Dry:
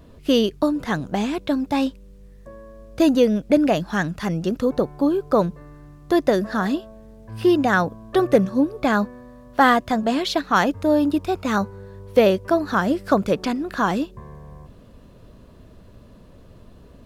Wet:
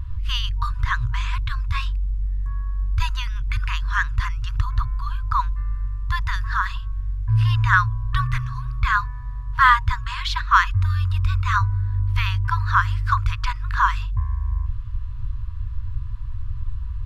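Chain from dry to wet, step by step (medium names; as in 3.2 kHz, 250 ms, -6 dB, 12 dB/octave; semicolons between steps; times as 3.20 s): RIAA curve playback; FFT band-reject 120–940 Hz; trim +5.5 dB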